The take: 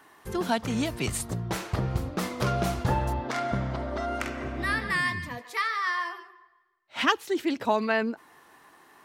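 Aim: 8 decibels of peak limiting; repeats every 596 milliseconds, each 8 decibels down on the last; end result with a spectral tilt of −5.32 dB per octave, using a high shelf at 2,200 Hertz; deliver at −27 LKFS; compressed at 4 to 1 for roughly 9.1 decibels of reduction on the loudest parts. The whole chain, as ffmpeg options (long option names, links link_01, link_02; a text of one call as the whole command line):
ffmpeg -i in.wav -af "highshelf=frequency=2200:gain=-3.5,acompressor=threshold=-30dB:ratio=4,alimiter=level_in=2.5dB:limit=-24dB:level=0:latency=1,volume=-2.5dB,aecho=1:1:596|1192|1788|2384|2980:0.398|0.159|0.0637|0.0255|0.0102,volume=9dB" out.wav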